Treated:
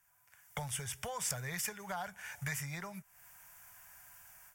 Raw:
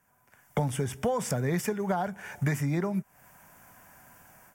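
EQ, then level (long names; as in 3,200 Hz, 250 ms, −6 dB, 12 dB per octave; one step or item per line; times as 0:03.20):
guitar amp tone stack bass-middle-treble 10-0-10
+1.5 dB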